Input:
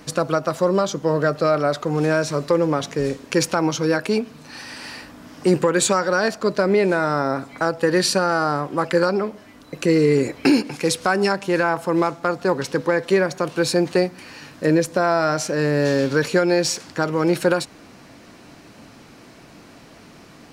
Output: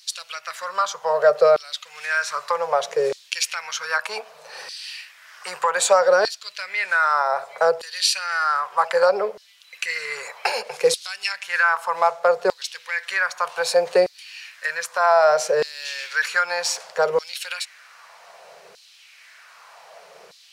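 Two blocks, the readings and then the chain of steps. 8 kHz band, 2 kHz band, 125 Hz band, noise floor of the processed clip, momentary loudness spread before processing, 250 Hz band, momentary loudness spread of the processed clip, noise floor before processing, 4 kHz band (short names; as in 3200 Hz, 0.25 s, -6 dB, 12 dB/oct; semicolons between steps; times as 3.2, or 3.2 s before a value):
-0.5 dB, +2.5 dB, under -25 dB, -51 dBFS, 7 LU, -23.5 dB, 15 LU, -46 dBFS, +1.5 dB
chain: Chebyshev band-stop 170–480 Hz, order 2; LFO high-pass saw down 0.64 Hz 370–4300 Hz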